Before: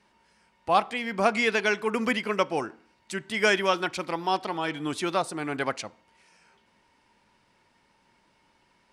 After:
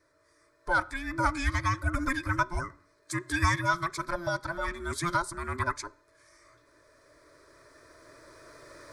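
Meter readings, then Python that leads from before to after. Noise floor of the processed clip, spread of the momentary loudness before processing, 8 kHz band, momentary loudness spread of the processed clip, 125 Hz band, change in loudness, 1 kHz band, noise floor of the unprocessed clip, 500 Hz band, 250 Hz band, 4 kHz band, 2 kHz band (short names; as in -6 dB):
-67 dBFS, 12 LU, 0.0 dB, 10 LU, +8.0 dB, -3.5 dB, -2.5 dB, -67 dBFS, -10.0 dB, -4.5 dB, -8.5 dB, -2.0 dB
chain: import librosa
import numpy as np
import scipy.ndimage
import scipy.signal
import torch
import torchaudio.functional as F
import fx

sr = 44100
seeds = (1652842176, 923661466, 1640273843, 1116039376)

y = fx.band_invert(x, sr, width_hz=500)
y = fx.recorder_agc(y, sr, target_db=-13.5, rise_db_per_s=6.1, max_gain_db=30)
y = fx.fixed_phaser(y, sr, hz=770.0, stages=6)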